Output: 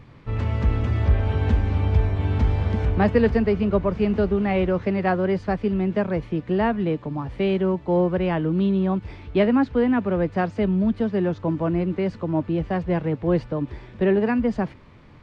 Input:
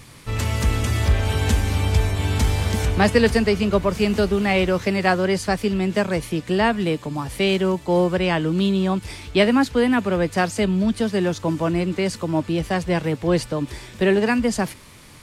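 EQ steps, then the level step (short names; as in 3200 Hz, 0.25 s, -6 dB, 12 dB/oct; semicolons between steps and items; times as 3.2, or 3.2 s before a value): tape spacing loss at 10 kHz 40 dB; 0.0 dB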